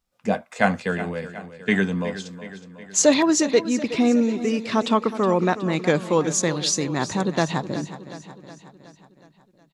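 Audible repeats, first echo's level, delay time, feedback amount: 5, -13.5 dB, 368 ms, 57%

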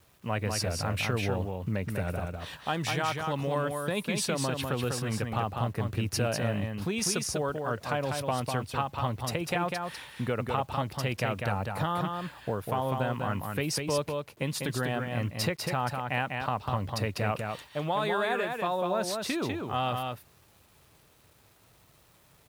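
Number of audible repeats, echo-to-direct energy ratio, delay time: 1, -4.5 dB, 198 ms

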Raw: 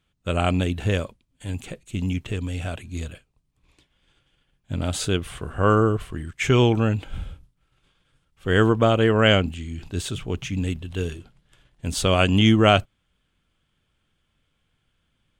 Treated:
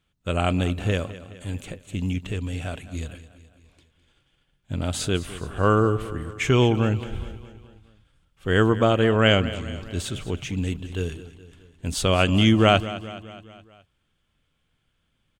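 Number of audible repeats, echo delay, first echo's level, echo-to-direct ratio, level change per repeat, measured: 4, 210 ms, -15.5 dB, -14.0 dB, -5.0 dB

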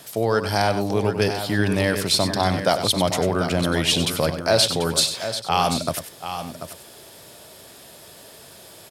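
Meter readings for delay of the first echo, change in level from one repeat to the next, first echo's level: 96 ms, no regular repeats, -10.0 dB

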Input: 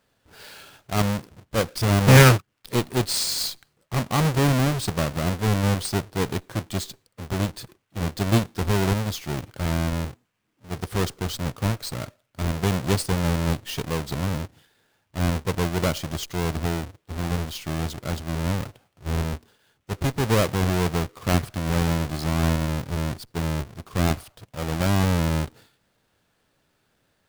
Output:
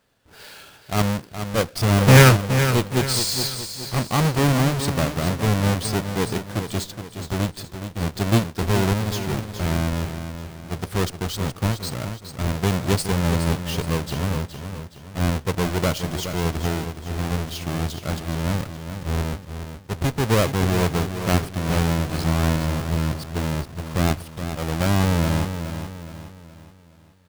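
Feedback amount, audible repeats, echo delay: 42%, 4, 419 ms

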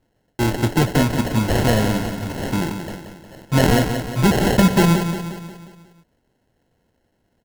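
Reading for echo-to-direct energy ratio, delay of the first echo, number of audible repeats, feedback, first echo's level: -6.5 dB, 179 ms, 5, 51%, -8.0 dB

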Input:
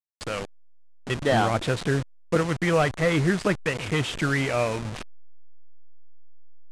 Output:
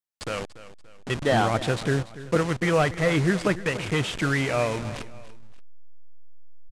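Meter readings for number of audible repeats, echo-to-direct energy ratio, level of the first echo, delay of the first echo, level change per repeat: 2, -15.5 dB, -16.0 dB, 288 ms, -8.0 dB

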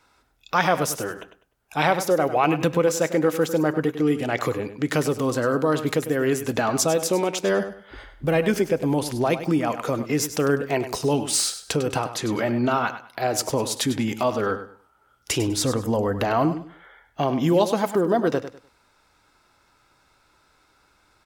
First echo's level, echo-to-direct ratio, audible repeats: -11.5 dB, -11.0 dB, 2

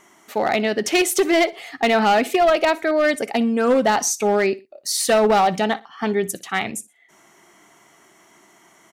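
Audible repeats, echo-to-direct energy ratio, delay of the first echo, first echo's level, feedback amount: 2, -20.0 dB, 60 ms, -20.5 dB, 31%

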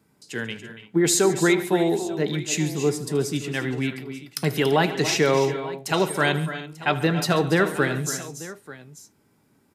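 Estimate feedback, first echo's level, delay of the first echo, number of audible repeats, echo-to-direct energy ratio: no regular repeats, -17.0 dB, 78 ms, 5, -8.5 dB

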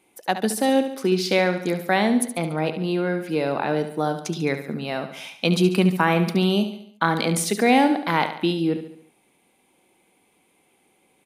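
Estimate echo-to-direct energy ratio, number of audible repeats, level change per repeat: -9.0 dB, 5, -6.0 dB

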